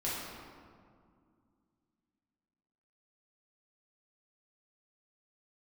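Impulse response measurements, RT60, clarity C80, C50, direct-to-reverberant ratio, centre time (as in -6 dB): 2.2 s, 0.5 dB, -1.5 dB, -8.0 dB, 0.119 s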